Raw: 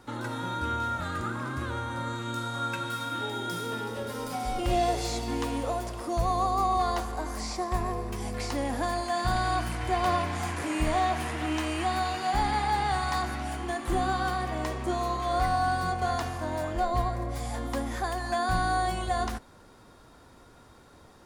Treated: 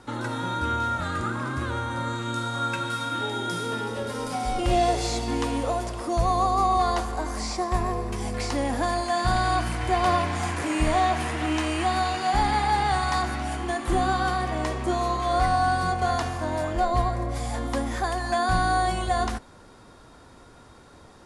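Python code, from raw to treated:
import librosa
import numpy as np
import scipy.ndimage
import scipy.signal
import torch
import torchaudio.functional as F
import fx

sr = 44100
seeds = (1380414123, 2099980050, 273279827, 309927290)

y = scipy.signal.sosfilt(scipy.signal.butter(6, 11000.0, 'lowpass', fs=sr, output='sos'), x)
y = y * 10.0 ** (4.0 / 20.0)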